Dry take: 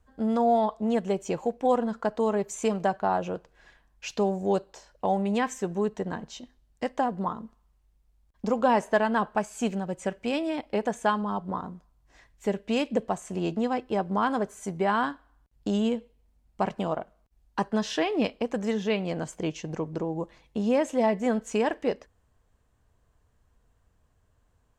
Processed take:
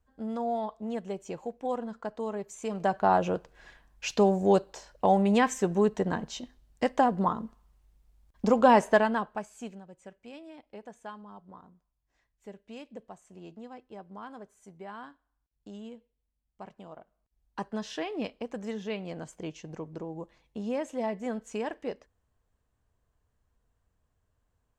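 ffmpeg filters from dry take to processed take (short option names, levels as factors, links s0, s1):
-af "volume=4.47,afade=t=in:st=2.67:d=0.44:silence=0.266073,afade=t=out:st=8.87:d=0.37:silence=0.316228,afade=t=out:st=9.24:d=0.62:silence=0.281838,afade=t=in:st=16.92:d=0.68:silence=0.316228"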